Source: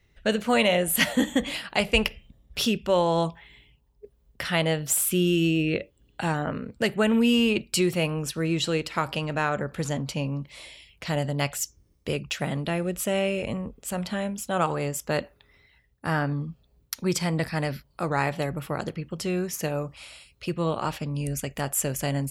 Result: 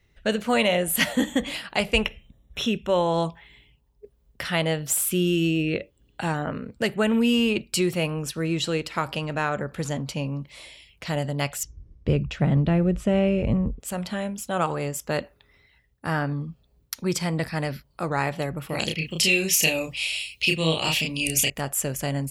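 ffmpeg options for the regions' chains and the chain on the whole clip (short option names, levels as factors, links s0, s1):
-filter_complex "[0:a]asettb=1/sr,asplit=3[s0][s1][s2];[s0]atrim=end=2.014[s3];[s1]atrim=start=2.01:end=3.14,asetpts=PTS-STARTPTS,afade=t=in:d=0.004:c=qsin,afade=t=out:st=1.126:d=0.004:c=qsin,acrossover=split=5400[s4][s5];[s5]acompressor=threshold=0.00501:ratio=4:attack=1:release=60[s6];[s4][s6]amix=inputs=2:normalize=0,asuperstop=centerf=4700:order=12:qfactor=4[s7];[s2]atrim=start=3.136[s8];[s3][s7]acrossfade=d=0.004:c1=hsin:c2=qsin[s9];[s9][s8]acrossfade=d=0.004:c1=qsin:c2=hsin,asettb=1/sr,asplit=3[s10][s11][s12];[s10]atrim=end=11.634[s13];[s11]atrim=start=11.63:end=13.8,asetpts=PTS-STARTPTS,afade=t=in:d=0.004:c=qsin,afade=t=out:st=2.166:d=0.004:c=qsin,lowpass=11000,aemphasis=mode=reproduction:type=riaa[s14];[s12]atrim=start=13.796[s15];[s13][s14]acrossfade=d=0.004:c1=hsin:c2=qsin[s16];[s16][s15]acrossfade=d=0.004:c1=qsin:c2=hsin,asettb=1/sr,asplit=3[s17][s18][s19];[s17]atrim=end=18.694[s20];[s18]atrim=start=18.69:end=21.5,asetpts=PTS-STARTPTS,afade=t=in:d=0.004:c=qsin,afade=t=out:st=2.806:d=0.004:c=qsin,highshelf=f=1900:t=q:w=3:g=11,asplit=2[s21][s22];[s22]adelay=31,volume=0.75[s23];[s21][s23]amix=inputs=2:normalize=0,atrim=end_sample=123921[s24];[s19]atrim=start=21.496[s25];[s20][s24]acrossfade=d=0.004:c1=hsin:c2=qsin[s26];[s26][s25]acrossfade=d=0.004:c1=qsin:c2=hsin"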